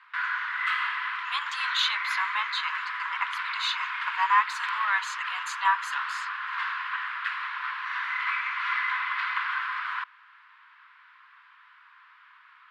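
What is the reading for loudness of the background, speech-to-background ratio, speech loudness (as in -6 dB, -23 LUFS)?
-30.0 LUFS, 1.0 dB, -29.0 LUFS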